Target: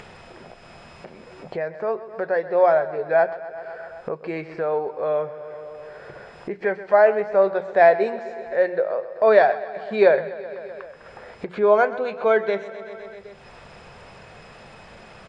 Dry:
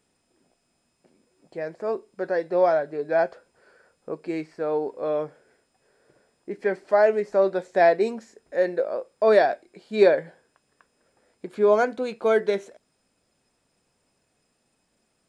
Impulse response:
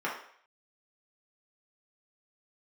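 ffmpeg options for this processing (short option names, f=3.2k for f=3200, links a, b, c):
-af "lowpass=2.7k,equalizer=f=280:t=o:w=0.74:g=-14.5,bandreject=f=60:t=h:w=6,bandreject=f=120:t=h:w=6,bandreject=f=180:t=h:w=6,aecho=1:1:128|256|384|512|640|768:0.168|0.099|0.0584|0.0345|0.0203|0.012,acompressor=mode=upward:threshold=-28dB:ratio=2.5,volume=5dB"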